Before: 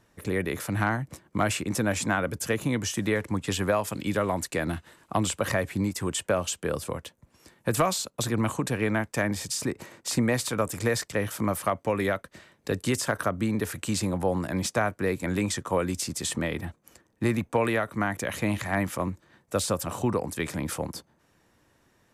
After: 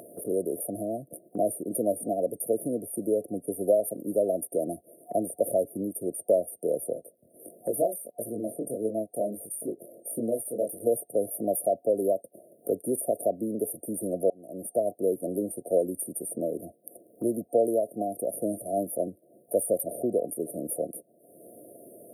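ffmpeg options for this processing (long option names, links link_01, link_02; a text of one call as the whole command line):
ffmpeg -i in.wav -filter_complex "[0:a]asettb=1/sr,asplit=3[link_01][link_02][link_03];[link_01]atrim=end=6.944[link_04];[link_02]atrim=start=6.94:end=10.87,asetpts=PTS-STARTPTS,afade=type=in:duration=0.004:curve=qsin,afade=type=out:start_time=3.926:duration=0.004:curve=qsin,flanger=delay=17.5:depth=7:speed=1.5[link_05];[link_03]atrim=start=10.866[link_06];[link_04][link_05]acrossfade=duration=0.004:curve1=hsin:curve2=qsin[link_07];[link_07][link_06]acrossfade=duration=0.004:curve1=qsin:curve2=hsin,asplit=2[link_08][link_09];[link_08]atrim=end=14.3,asetpts=PTS-STARTPTS,afade=type=out:start_time=14.296:duration=0.004:curve=hsin[link_10];[link_09]atrim=start=14.3,asetpts=PTS-STARTPTS,afade=type=in:duration=0.6[link_11];[link_10][link_11]concat=n=2:v=0:a=1,highpass=420,afftfilt=real='re*(1-between(b*sr/4096,720,8800))':imag='im*(1-between(b*sr/4096,720,8800))':win_size=4096:overlap=0.75,acompressor=mode=upward:threshold=-38dB:ratio=2.5,volume=5.5dB" out.wav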